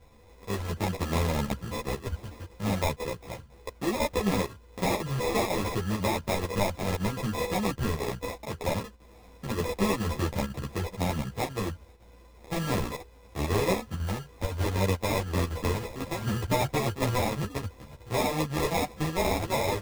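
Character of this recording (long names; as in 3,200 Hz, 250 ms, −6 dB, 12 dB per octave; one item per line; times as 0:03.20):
a buzz of ramps at a fixed pitch in blocks of 8 samples
chopped level 2 Hz, depth 60%, duty 90%
aliases and images of a low sample rate 1,500 Hz, jitter 0%
a shimmering, thickened sound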